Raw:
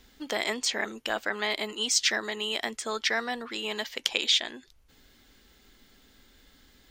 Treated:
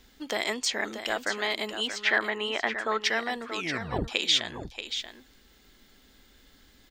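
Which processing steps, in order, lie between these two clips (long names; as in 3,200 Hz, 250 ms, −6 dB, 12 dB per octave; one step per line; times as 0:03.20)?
0:01.87–0:03.01: drawn EQ curve 210 Hz 0 dB, 1,500 Hz +7 dB, 2,300 Hz +3 dB, 5,700 Hz −16 dB
0:03.54: tape stop 0.54 s
single-tap delay 632 ms −9.5 dB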